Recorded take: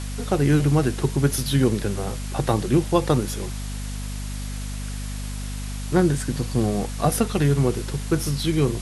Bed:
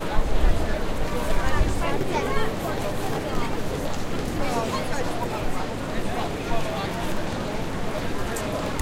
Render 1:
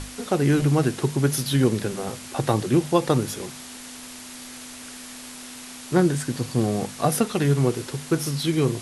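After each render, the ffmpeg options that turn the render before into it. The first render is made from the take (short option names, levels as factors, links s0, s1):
-af "bandreject=f=50:t=h:w=6,bandreject=f=100:t=h:w=6,bandreject=f=150:t=h:w=6,bandreject=f=200:t=h:w=6"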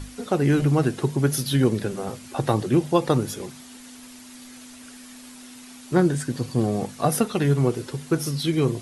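-af "afftdn=nr=8:nf=-40"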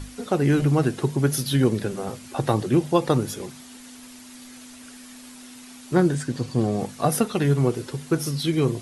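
-filter_complex "[0:a]asettb=1/sr,asplit=3[s0][s1][s2];[s0]atrim=end=6.154[s3];[s1]atrim=start=6.15:end=6.79,asetpts=PTS-STARTPTS,afade=t=in:d=0.004:c=qsin,afade=t=out:st=0.636:d=0.004:c=qsin,lowpass=9100[s4];[s2]atrim=start=6.786[s5];[s3][s4]acrossfade=d=0.004:c1=hsin:c2=qsin[s6];[s6][s5]acrossfade=d=0.004:c1=qsin:c2=hsin"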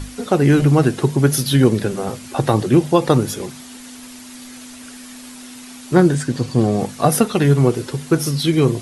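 -af "volume=2.11,alimiter=limit=0.891:level=0:latency=1"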